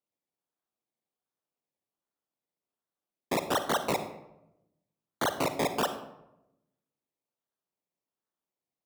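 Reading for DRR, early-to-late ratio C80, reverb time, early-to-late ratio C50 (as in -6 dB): 9.0 dB, 12.5 dB, 0.90 s, 10.5 dB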